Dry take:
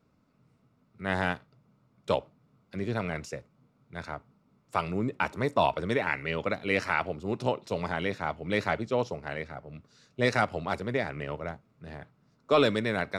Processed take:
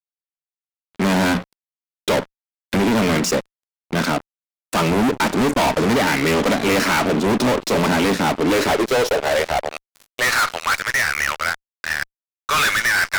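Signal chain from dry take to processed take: hum notches 60/120/180 Hz; in parallel at +2.5 dB: compression 20:1, threshold -37 dBFS, peak gain reduction 20 dB; on the sum: high-pass sweep 240 Hz -> 1.6 kHz, 8.25–10.65 s; fuzz box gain 39 dB, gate -44 dBFS; trim -2 dB

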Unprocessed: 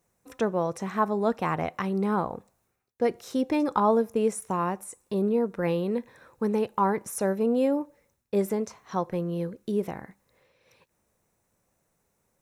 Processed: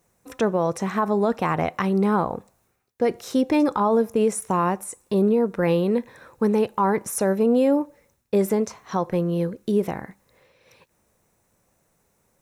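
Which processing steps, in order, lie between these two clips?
peak limiter -18.5 dBFS, peak gain reduction 9 dB; trim +6.5 dB

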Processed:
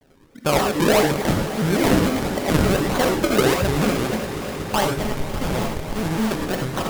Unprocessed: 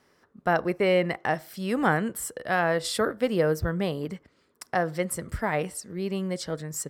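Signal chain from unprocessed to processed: in parallel at +1 dB: compression, threshold -31 dBFS, peak gain reduction 13.5 dB; on the sum: decimation with a swept rate 38×, swing 100% 1.6 Hz; 4.95–6.21 s: Schmitt trigger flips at -27.5 dBFS; echo with a slow build-up 121 ms, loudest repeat 5, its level -17 dB; gated-style reverb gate 120 ms rising, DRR 2 dB; vibrato with a chosen wave square 3.4 Hz, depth 250 cents; trim +1.5 dB

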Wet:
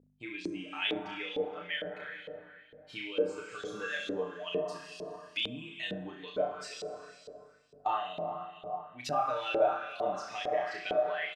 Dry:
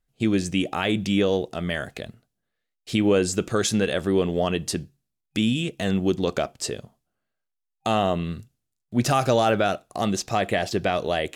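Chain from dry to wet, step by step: expander on every frequency bin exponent 1.5; comb 6.7 ms, depth 93%; plate-style reverb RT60 2.5 s, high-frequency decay 0.7×, DRR 5 dB; compression 2:1, threshold -35 dBFS, peak gain reduction 12.5 dB; hum 50 Hz, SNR 18 dB; on a send: flutter echo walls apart 5.6 m, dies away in 0.41 s; on the sum: LFO band-pass saw up 2.2 Hz 440–3600 Hz; trim +5 dB

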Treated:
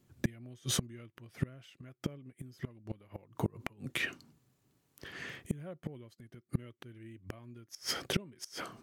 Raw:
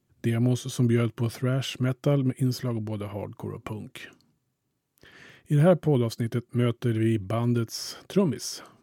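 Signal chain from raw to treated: dynamic bell 2.1 kHz, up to +6 dB, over -52 dBFS, Q 1.8; inverted gate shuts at -22 dBFS, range -31 dB; trim +4.5 dB

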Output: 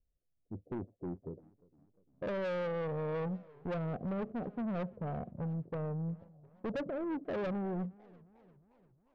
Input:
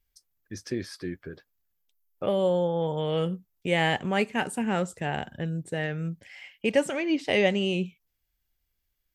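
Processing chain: hard clipper -20 dBFS, distortion -14 dB; rippled Chebyshev low-pass 720 Hz, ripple 3 dB; saturation -33.5 dBFS, distortion -8 dB; modulated delay 353 ms, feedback 58%, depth 172 cents, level -23.5 dB

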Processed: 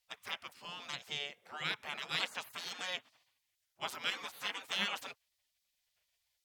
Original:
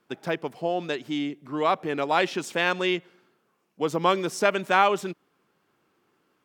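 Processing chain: spectral gate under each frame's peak -20 dB weak; 4.10–4.72 s: three-phase chorus

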